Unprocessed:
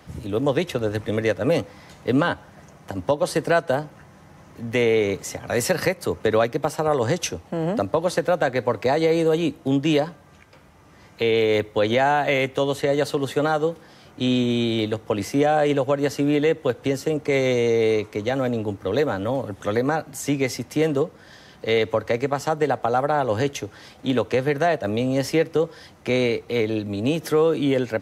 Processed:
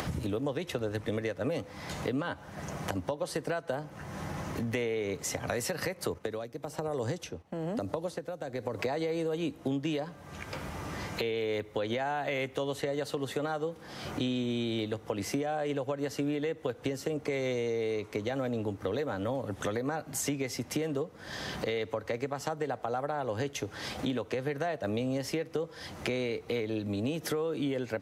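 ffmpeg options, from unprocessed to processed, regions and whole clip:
-filter_complex "[0:a]asettb=1/sr,asplit=3[a][b][c];[a]atrim=end=6.144[d];[b]atrim=start=6.14:end=8.79,asetpts=PTS-STARTPTS,afade=t=in:d=0.004:c=qsin,afade=t=out:st=2.646:d=0.004:c=qsin,agate=range=-7dB:threshold=-42dB:ratio=16:release=100:detection=peak,acrossover=split=660|4500[e][f][g];[e]acompressor=threshold=-24dB:ratio=4[h];[f]acompressor=threshold=-36dB:ratio=4[i];[g]acompressor=threshold=-43dB:ratio=4[j];[h][i][j]amix=inputs=3:normalize=0,aeval=exprs='val(0)*pow(10,-20*(0.5-0.5*cos(2*PI*1.1*n/s))/20)':c=same[k];[c]atrim=start=8.786[l];[d][k]acrossfade=d=0.004:c1=hsin:c2=qsin[m];[m][l]acrossfade=d=0.004:c1=qsin:c2=hsin,acompressor=mode=upward:threshold=-26dB:ratio=2.5,alimiter=limit=-14dB:level=0:latency=1:release=224,acompressor=threshold=-30dB:ratio=5"

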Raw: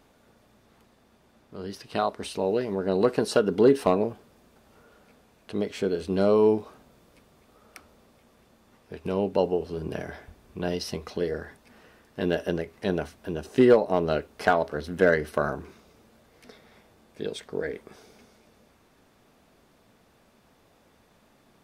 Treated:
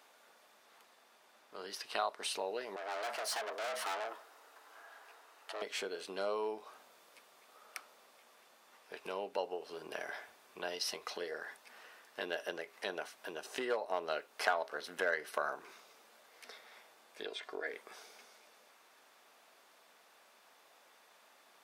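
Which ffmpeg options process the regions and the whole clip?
-filter_complex "[0:a]asettb=1/sr,asplit=3[a][b][c];[a]atrim=end=2.764[d];[b]atrim=start=2.76:end=5.62,asetpts=PTS-STARTPTS,afade=t=in:d=0.004:c=qsin,afade=t=out:st=2.856:d=0.004:c=qsin,equalizer=f=1.1k:w=1.6:g=5.5,aeval=exprs='(tanh(50.1*val(0)+0.3)-tanh(0.3))/50.1':c=same,afreqshift=220[e];[c]atrim=start=5.616[f];[d][e]acrossfade=d=0.004:c1=hsin:c2=qsin[g];[g][f]acrossfade=d=0.004:c1=qsin:c2=hsin,asettb=1/sr,asplit=3[h][i][j];[h]atrim=end=17.254[k];[i]atrim=start=17.25:end=17.67,asetpts=PTS-STARTPTS,afade=t=in:d=0.004:c=qsin,afade=t=out:st=0.416:d=0.004:c=qsin,acrossover=split=4200[l][m];[m]acompressor=threshold=-55dB:ratio=4:attack=1:release=60[n];[l][n]amix=inputs=2:normalize=0,highshelf=f=5.2k:g=-5.5,aecho=1:1:2.9:0.55,atrim=end_sample=18522[o];[j]atrim=start=17.666[p];[k][o]acrossfade=d=0.004:c1=hsin:c2=qsin[q];[q][p]acrossfade=d=0.004:c1=qsin:c2=hsin,acompressor=threshold=-33dB:ratio=2,highpass=770,volume=1.5dB"

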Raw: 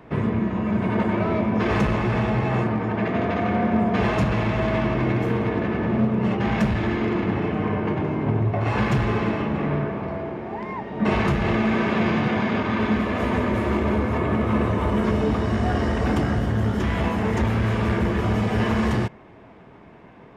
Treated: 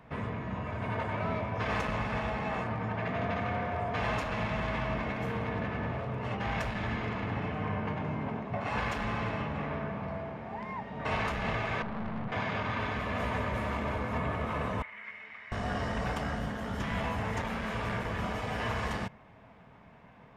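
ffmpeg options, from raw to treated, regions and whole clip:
-filter_complex "[0:a]asettb=1/sr,asplit=3[a][b][c];[a]atrim=end=11.824[d];[b]atrim=start=11.82:end=12.32,asetpts=PTS-STARTPTS,afade=t=in:d=0.004:c=qsin,afade=t=out:st=0.496:d=0.004:c=qsin,lowpass=1.1k,equalizer=f=500:w=5:g=-4,aeval=exprs='(tanh(17.8*val(0)+0.65)-tanh(0.65))/17.8':c=same[e];[c]atrim=start=12.316[f];[d][e]acrossfade=d=0.004:c1=hsin:c2=qsin[g];[g][f]acrossfade=d=0.004:c1=qsin:c2=hsin,asettb=1/sr,asplit=3[h][i][j];[h]atrim=end=14.824[k];[i]atrim=start=14.82:end=15.52,asetpts=PTS-STARTPTS,afade=t=in:d=0.004:c=qsin,afade=t=out:st=0.696:d=0.004:c=qsin,bandpass=f=2.1k:t=q:w=8.6,acontrast=28[l];[j]atrim=start=15.516[m];[k][l]acrossfade=d=0.004:c1=hsin:c2=qsin[n];[n][m]acrossfade=d=0.004:c1=qsin:c2=hsin,afftfilt=real='re*lt(hypot(re,im),0.562)':imag='im*lt(hypot(re,im),0.562)':win_size=1024:overlap=0.75,equalizer=f=350:t=o:w=0.56:g=-14,volume=-6dB"

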